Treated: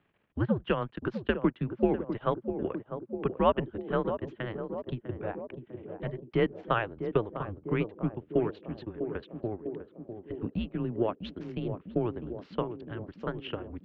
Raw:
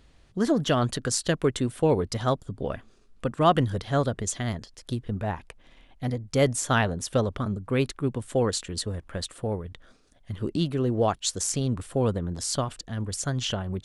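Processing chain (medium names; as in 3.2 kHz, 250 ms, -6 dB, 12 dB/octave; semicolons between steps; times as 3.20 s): transient shaper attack +7 dB, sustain -12 dB; band-passed feedback delay 650 ms, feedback 74%, band-pass 450 Hz, level -8 dB; mistuned SSB -110 Hz 210–3000 Hz; trim -7 dB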